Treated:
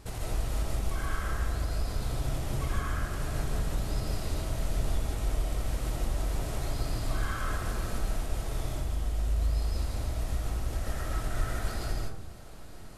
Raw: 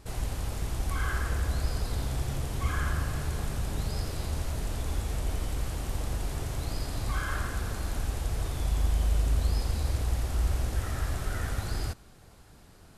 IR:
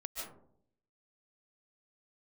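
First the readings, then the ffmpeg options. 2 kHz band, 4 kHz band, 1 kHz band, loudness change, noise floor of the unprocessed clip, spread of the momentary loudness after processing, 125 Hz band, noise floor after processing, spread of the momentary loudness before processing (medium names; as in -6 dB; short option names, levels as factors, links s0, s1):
-2.0 dB, -1.5 dB, -0.5 dB, -1.5 dB, -53 dBFS, 3 LU, -2.5 dB, -41 dBFS, 6 LU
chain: -filter_complex "[0:a]acompressor=threshold=0.0224:ratio=6[s0];[1:a]atrim=start_sample=2205[s1];[s0][s1]afir=irnorm=-1:irlink=0,volume=2"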